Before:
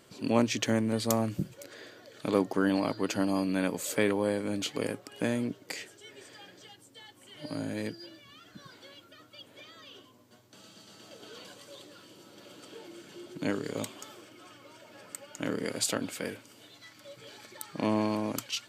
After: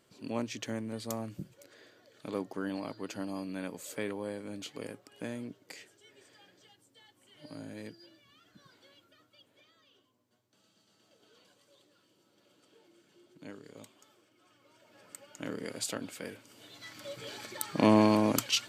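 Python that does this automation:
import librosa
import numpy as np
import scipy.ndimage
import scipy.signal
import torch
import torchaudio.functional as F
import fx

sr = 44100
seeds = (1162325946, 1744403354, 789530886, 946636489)

y = fx.gain(x, sr, db=fx.line((9.09, -9.5), (9.89, -16.0), (14.32, -16.0), (15.16, -6.0), (16.31, -6.0), (16.97, 5.5)))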